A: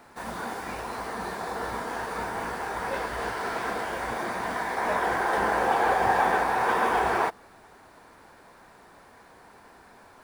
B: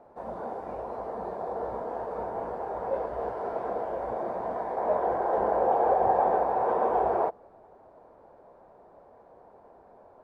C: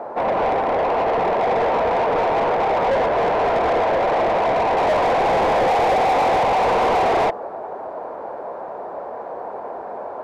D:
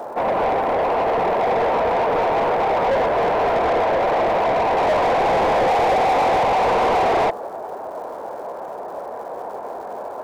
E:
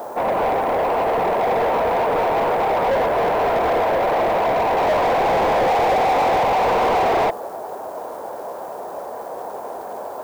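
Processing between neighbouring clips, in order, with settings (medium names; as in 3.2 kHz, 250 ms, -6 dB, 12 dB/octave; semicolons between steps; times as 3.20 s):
FFT filter 280 Hz 0 dB, 590 Hz +11 dB, 1.8 kHz -14 dB, 15 kHz -27 dB; trim -5 dB
overdrive pedal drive 34 dB, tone 1.6 kHz, clips at -10.5 dBFS
crackle 470 per s -42 dBFS
added noise blue -51 dBFS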